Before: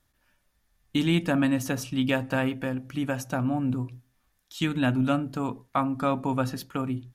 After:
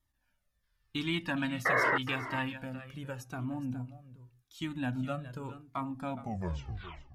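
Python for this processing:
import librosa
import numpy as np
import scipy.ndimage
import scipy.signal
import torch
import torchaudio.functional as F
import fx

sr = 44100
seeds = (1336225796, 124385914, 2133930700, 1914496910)

p1 = fx.tape_stop_end(x, sr, length_s=1.01)
p2 = fx.spec_box(p1, sr, start_s=0.63, length_s=1.94, low_hz=870.0, high_hz=5600.0, gain_db=7)
p3 = fx.peak_eq(p2, sr, hz=98.0, db=3.0, octaves=2.1)
p4 = fx.spec_paint(p3, sr, seeds[0], shape='noise', start_s=1.65, length_s=0.33, low_hz=230.0, high_hz=2200.0, level_db=-16.0)
p5 = p4 + fx.echo_single(p4, sr, ms=416, db=-14.0, dry=0)
p6 = fx.comb_cascade(p5, sr, direction='falling', hz=0.86)
y = p6 * librosa.db_to_amplitude(-7.0)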